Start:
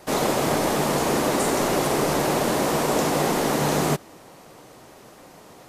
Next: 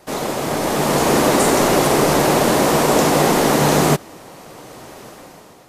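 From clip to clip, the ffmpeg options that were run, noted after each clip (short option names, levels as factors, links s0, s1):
-af "dynaudnorm=f=240:g=7:m=6.31,volume=0.891"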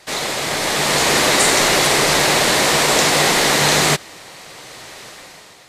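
-af "equalizer=f=250:t=o:w=1:g=-5,equalizer=f=2000:t=o:w=1:g=9,equalizer=f=4000:t=o:w=1:g=10,equalizer=f=8000:t=o:w=1:g=7,volume=0.708"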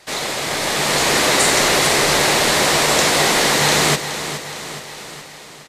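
-af "aecho=1:1:420|840|1260|1680|2100|2520:0.282|0.152|0.0822|0.0444|0.024|0.0129,volume=0.891"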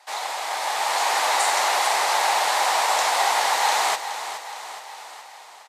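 -af "highpass=f=830:t=q:w=4.1,volume=0.355"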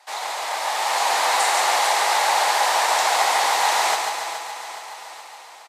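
-af "aecho=1:1:142|284|426|568|710|852|994:0.562|0.298|0.158|0.0837|0.0444|0.0235|0.0125"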